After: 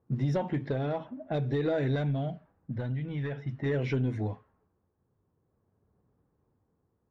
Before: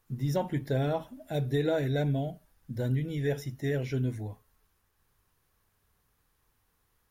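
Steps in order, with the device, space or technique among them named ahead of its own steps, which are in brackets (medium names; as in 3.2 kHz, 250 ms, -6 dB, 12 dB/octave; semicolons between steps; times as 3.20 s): AM radio (band-pass 110–3400 Hz; compression 6:1, threshold -32 dBFS, peak gain reduction 8.5 dB; saturation -28 dBFS, distortion -20 dB; tremolo 0.49 Hz, depth 33%); 1.95–3.66 s: dynamic bell 400 Hz, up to -7 dB, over -52 dBFS, Q 1; level-controlled noise filter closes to 470 Hz, open at -34.5 dBFS; trim +9 dB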